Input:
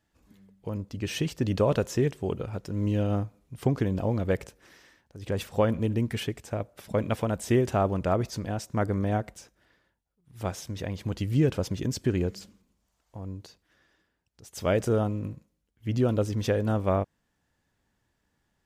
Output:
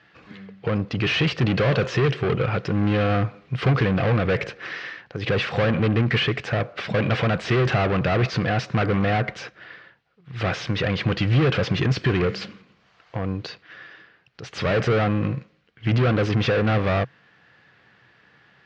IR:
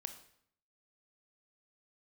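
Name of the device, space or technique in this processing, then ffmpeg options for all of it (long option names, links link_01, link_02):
overdrive pedal into a guitar cabinet: -filter_complex "[0:a]asplit=2[link_01][link_02];[link_02]highpass=frequency=720:poles=1,volume=33dB,asoftclip=type=tanh:threshold=-11dB[link_03];[link_01][link_03]amix=inputs=2:normalize=0,lowpass=frequency=3700:poles=1,volume=-6dB,highpass=76,equalizer=frequency=130:width_type=q:width=4:gain=8,equalizer=frequency=260:width_type=q:width=4:gain=-8,equalizer=frequency=370:width_type=q:width=4:gain=-3,equalizer=frequency=610:width_type=q:width=4:gain=-6,equalizer=frequency=910:width_type=q:width=4:gain=-9,equalizer=frequency=3500:width_type=q:width=4:gain=-4,lowpass=frequency=4000:width=0.5412,lowpass=frequency=4000:width=1.3066"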